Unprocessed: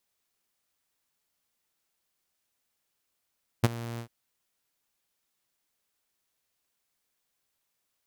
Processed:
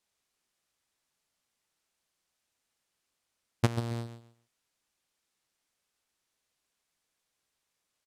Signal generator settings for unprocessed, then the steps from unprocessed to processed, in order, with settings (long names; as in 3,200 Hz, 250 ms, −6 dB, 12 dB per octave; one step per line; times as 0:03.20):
note with an ADSR envelope saw 117 Hz, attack 15 ms, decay 28 ms, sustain −19 dB, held 0.36 s, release 87 ms −13 dBFS
low-pass filter 10,000 Hz 12 dB per octave
on a send: repeating echo 137 ms, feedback 24%, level −10.5 dB